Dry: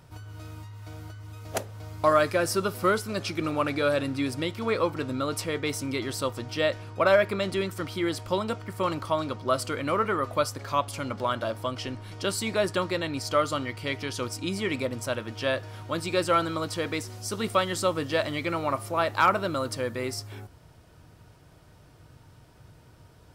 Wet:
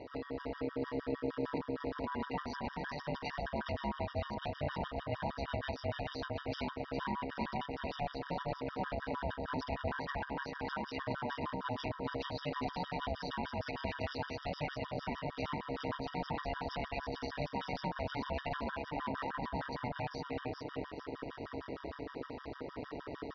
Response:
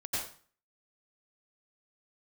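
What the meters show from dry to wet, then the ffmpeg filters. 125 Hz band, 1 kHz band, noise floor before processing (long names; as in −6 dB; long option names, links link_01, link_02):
−8.0 dB, −9.5 dB, −55 dBFS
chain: -af "areverse,acompressor=mode=upward:threshold=-41dB:ratio=2.5,areverse,alimiter=limit=-19dB:level=0:latency=1,aecho=1:1:3.3:0.93,bandreject=frequency=79.66:width_type=h:width=4,bandreject=frequency=159.32:width_type=h:width=4,bandreject=frequency=238.98:width_type=h:width=4,bandreject=frequency=318.64:width_type=h:width=4,bandreject=frequency=398.3:width_type=h:width=4,bandreject=frequency=477.96:width_type=h:width=4,bandreject=frequency=557.62:width_type=h:width=4,bandreject=frequency=637.28:width_type=h:width=4,bandreject=frequency=716.94:width_type=h:width=4,bandreject=frequency=796.6:width_type=h:width=4,bandreject=frequency=876.26:width_type=h:width=4,bandreject=frequency=955.92:width_type=h:width=4,bandreject=frequency=1035.58:width_type=h:width=4,acompressor=threshold=-38dB:ratio=4,aresample=11025,asoftclip=type=tanh:threshold=-38.5dB,aresample=44100,aecho=1:1:416|832|1248|1664:0.596|0.208|0.073|0.0255,aeval=exprs='val(0)*sin(2*PI*370*n/s)':channel_layout=same,highshelf=frequency=4100:gain=-9.5,tremolo=f=140:d=0.788,highpass=42,afftfilt=real='re*gt(sin(2*PI*6.5*pts/sr)*(1-2*mod(floor(b*sr/1024/950),2)),0)':imag='im*gt(sin(2*PI*6.5*pts/sr)*(1-2*mod(floor(b*sr/1024/950),2)),0)':win_size=1024:overlap=0.75,volume=13dB"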